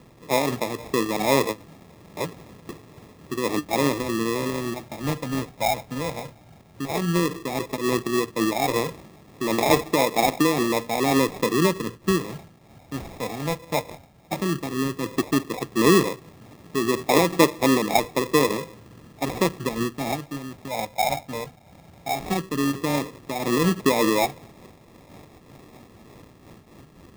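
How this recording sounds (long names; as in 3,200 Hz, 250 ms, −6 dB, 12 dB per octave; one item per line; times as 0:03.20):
phaser sweep stages 12, 0.13 Hz, lowest notch 360–3,500 Hz
aliases and images of a low sample rate 1,500 Hz, jitter 0%
amplitude modulation by smooth noise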